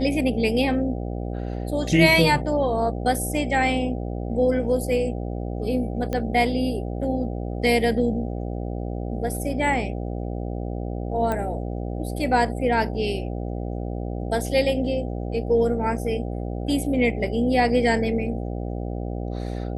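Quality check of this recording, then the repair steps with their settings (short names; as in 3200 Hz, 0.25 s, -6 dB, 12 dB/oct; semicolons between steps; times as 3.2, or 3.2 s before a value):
buzz 60 Hz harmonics 13 -29 dBFS
6.13 pop -14 dBFS
11.32 pop -14 dBFS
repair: de-click; de-hum 60 Hz, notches 13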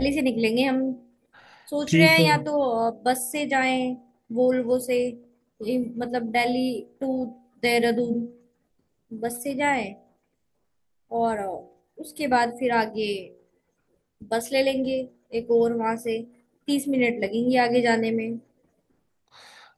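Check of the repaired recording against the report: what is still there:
none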